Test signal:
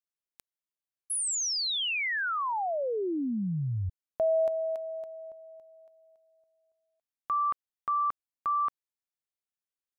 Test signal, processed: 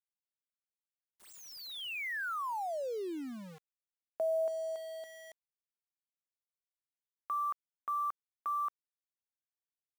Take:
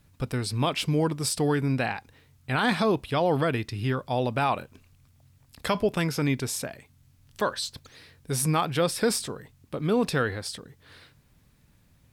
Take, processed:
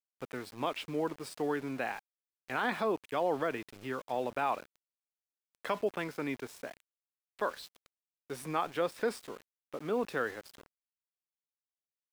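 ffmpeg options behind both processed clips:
-filter_complex "[0:a]acrossover=split=250 2900:gain=0.1 1 0.2[a][b][c];[a][b][c]amix=inputs=3:normalize=0,aeval=exprs='val(0)*gte(abs(val(0)),0.00891)':c=same,volume=-6dB"

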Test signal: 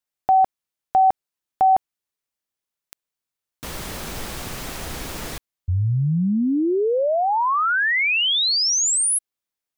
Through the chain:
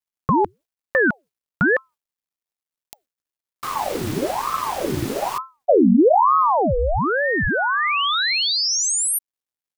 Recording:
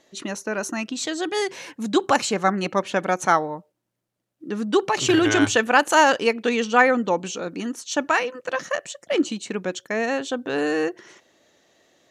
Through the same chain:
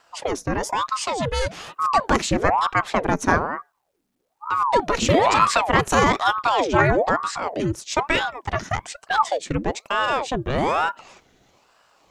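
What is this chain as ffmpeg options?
-filter_complex "[0:a]bass=f=250:g=10,treble=f=4k:g=-1,asplit=2[a][b];[b]acompressor=threshold=-22dB:ratio=8:attack=77:release=24:knee=6:detection=rms,volume=2dB[c];[a][c]amix=inputs=2:normalize=0,afreqshift=-140,acrusher=bits=11:mix=0:aa=0.000001,aeval=exprs='val(0)*sin(2*PI*700*n/s+700*0.7/1.1*sin(2*PI*1.1*n/s))':c=same,volume=-3.5dB"

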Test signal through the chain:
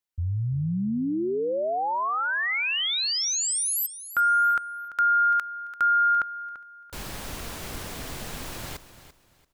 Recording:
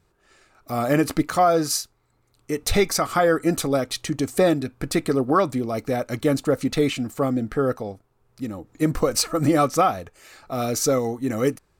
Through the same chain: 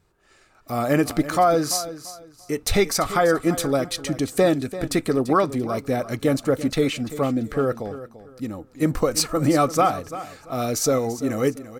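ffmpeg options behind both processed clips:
-af "aecho=1:1:340|680|1020:0.2|0.0519|0.0135"

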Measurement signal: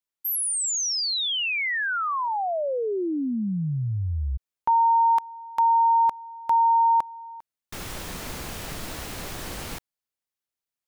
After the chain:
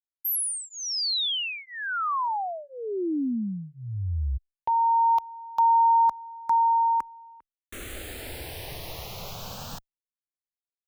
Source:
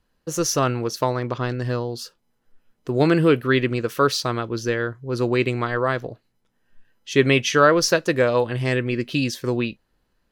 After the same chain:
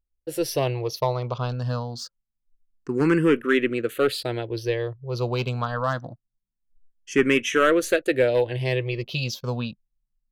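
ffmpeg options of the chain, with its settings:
-filter_complex "[0:a]anlmdn=0.1,aeval=exprs='clip(val(0),-1,0.251)':c=same,asplit=2[a][b];[b]afreqshift=0.25[c];[a][c]amix=inputs=2:normalize=1"

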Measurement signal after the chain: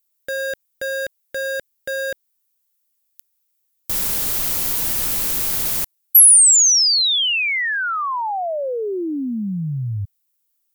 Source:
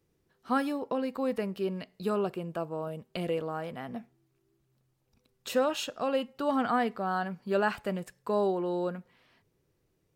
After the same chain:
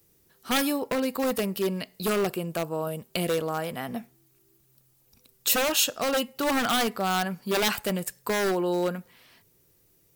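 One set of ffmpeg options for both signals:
-af "acontrast=47,aeval=exprs='0.106*(abs(mod(val(0)/0.106+3,4)-2)-1)':c=same,aemphasis=mode=production:type=75fm"

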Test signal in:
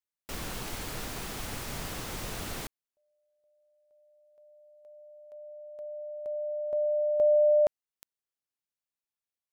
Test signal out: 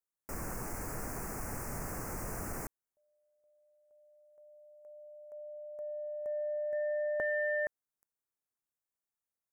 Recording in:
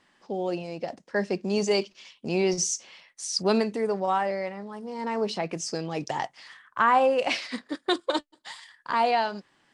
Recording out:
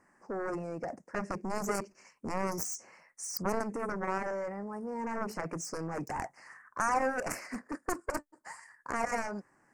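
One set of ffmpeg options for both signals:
-af "aeval=exprs='0.316*(cos(1*acos(clip(val(0)/0.316,-1,1)))-cos(1*PI/2))+0.0891*(cos(7*acos(clip(val(0)/0.316,-1,1)))-cos(7*PI/2))':c=same,asuperstop=centerf=3500:order=4:qfactor=0.75,acompressor=threshold=-31dB:ratio=2:attack=2.9:release=106:knee=6:detection=peak"

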